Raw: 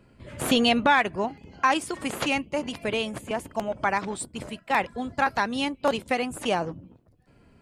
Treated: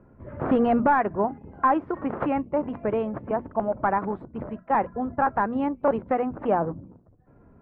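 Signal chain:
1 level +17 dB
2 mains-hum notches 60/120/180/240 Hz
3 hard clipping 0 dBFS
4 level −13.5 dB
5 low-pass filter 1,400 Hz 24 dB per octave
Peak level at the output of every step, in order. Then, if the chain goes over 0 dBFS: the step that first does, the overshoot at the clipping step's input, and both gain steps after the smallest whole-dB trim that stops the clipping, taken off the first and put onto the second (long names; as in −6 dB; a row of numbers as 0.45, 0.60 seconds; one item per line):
+8.0, +7.5, 0.0, −13.5, −12.0 dBFS
step 1, 7.5 dB
step 1 +9 dB, step 4 −5.5 dB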